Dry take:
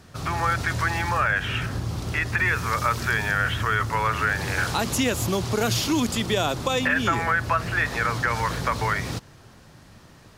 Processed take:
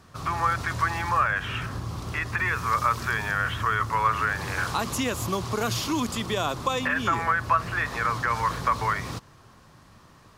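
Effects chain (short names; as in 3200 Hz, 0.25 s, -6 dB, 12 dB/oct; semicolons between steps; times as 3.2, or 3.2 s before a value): bell 1100 Hz +9 dB 0.41 oct; gain -4.5 dB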